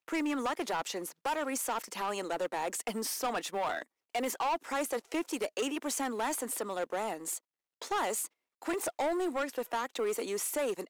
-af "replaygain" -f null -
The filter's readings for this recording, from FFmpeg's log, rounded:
track_gain = +15.5 dB
track_peak = 0.032